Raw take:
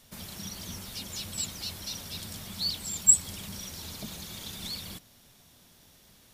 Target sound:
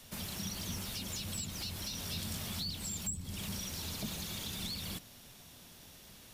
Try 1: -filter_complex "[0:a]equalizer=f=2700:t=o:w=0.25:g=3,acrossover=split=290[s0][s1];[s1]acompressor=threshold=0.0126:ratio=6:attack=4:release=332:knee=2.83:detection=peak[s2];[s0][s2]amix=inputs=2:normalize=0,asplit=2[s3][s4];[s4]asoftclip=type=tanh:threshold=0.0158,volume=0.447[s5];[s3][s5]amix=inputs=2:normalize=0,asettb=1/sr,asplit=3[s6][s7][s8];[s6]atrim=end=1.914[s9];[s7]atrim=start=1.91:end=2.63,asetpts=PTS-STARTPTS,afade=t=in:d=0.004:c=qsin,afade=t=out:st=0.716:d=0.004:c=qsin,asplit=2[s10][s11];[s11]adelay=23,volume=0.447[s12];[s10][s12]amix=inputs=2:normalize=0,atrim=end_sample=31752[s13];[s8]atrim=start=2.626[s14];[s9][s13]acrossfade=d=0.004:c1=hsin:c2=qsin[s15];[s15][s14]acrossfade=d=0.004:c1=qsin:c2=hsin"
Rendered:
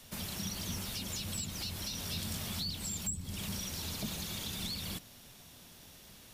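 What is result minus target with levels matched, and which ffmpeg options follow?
saturation: distortion -9 dB
-filter_complex "[0:a]equalizer=f=2700:t=o:w=0.25:g=3,acrossover=split=290[s0][s1];[s1]acompressor=threshold=0.0126:ratio=6:attack=4:release=332:knee=2.83:detection=peak[s2];[s0][s2]amix=inputs=2:normalize=0,asplit=2[s3][s4];[s4]asoftclip=type=tanh:threshold=0.00501,volume=0.447[s5];[s3][s5]amix=inputs=2:normalize=0,asettb=1/sr,asplit=3[s6][s7][s8];[s6]atrim=end=1.914[s9];[s7]atrim=start=1.91:end=2.63,asetpts=PTS-STARTPTS,afade=t=in:d=0.004:c=qsin,afade=t=out:st=0.716:d=0.004:c=qsin,asplit=2[s10][s11];[s11]adelay=23,volume=0.447[s12];[s10][s12]amix=inputs=2:normalize=0,atrim=end_sample=31752[s13];[s8]atrim=start=2.626[s14];[s9][s13]acrossfade=d=0.004:c1=hsin:c2=qsin[s15];[s15][s14]acrossfade=d=0.004:c1=qsin:c2=hsin"

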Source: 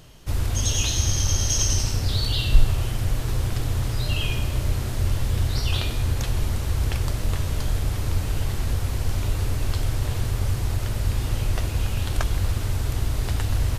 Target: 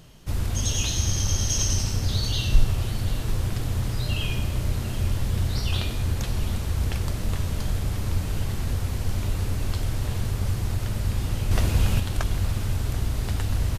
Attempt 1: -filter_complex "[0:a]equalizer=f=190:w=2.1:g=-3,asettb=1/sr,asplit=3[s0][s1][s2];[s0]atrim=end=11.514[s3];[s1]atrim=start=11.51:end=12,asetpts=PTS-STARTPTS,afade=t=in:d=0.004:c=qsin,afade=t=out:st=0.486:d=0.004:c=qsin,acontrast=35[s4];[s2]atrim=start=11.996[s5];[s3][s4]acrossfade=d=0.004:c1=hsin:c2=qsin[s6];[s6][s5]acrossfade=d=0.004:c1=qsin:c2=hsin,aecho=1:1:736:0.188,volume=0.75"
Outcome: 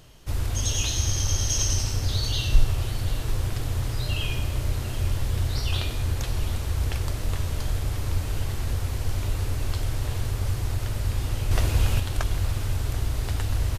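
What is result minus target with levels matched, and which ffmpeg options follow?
250 Hz band -4.0 dB
-filter_complex "[0:a]equalizer=f=190:w=2.1:g=6,asettb=1/sr,asplit=3[s0][s1][s2];[s0]atrim=end=11.514[s3];[s1]atrim=start=11.51:end=12,asetpts=PTS-STARTPTS,afade=t=in:d=0.004:c=qsin,afade=t=out:st=0.486:d=0.004:c=qsin,acontrast=35[s4];[s2]atrim=start=11.996[s5];[s3][s4]acrossfade=d=0.004:c1=hsin:c2=qsin[s6];[s6][s5]acrossfade=d=0.004:c1=qsin:c2=hsin,aecho=1:1:736:0.188,volume=0.75"

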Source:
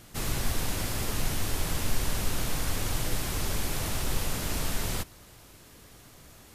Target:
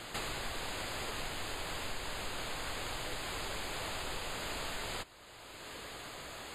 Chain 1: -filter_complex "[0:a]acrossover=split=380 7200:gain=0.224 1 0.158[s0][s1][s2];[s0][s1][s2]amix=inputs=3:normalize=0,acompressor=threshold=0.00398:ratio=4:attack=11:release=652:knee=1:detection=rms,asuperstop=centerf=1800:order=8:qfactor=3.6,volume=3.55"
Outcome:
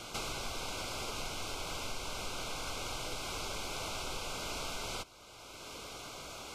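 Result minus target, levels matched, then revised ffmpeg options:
2 kHz band -3.0 dB
-filter_complex "[0:a]acrossover=split=380 7200:gain=0.224 1 0.158[s0][s1][s2];[s0][s1][s2]amix=inputs=3:normalize=0,acompressor=threshold=0.00398:ratio=4:attack=11:release=652:knee=1:detection=rms,asuperstop=centerf=5700:order=8:qfactor=3.6,volume=3.55"

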